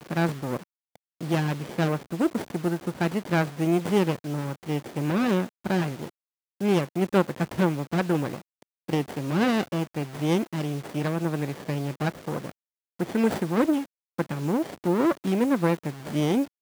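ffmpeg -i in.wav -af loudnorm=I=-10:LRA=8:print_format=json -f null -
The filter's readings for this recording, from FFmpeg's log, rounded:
"input_i" : "-26.7",
"input_tp" : "-7.1",
"input_lra" : "2.2",
"input_thresh" : "-37.0",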